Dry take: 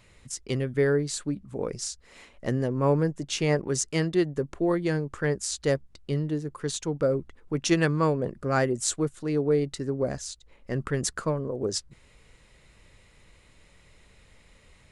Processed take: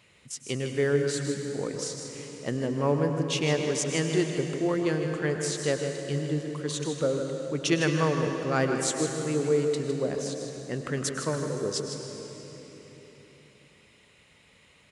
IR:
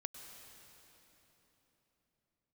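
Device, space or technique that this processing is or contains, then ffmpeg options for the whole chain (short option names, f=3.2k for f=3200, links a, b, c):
PA in a hall: -filter_complex "[0:a]highpass=120,equalizer=f=2.9k:t=o:w=0.74:g=5.5,aecho=1:1:157:0.355[a];[1:a]atrim=start_sample=2205[b];[a][b]afir=irnorm=-1:irlink=0,volume=1.5dB"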